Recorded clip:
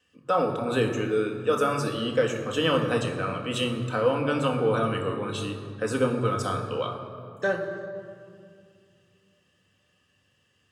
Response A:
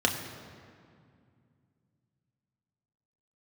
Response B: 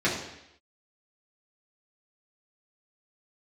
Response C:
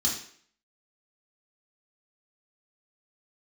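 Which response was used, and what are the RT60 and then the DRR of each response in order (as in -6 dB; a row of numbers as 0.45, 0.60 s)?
A; 2.3, 0.80, 0.55 s; 1.5, -7.5, -4.5 dB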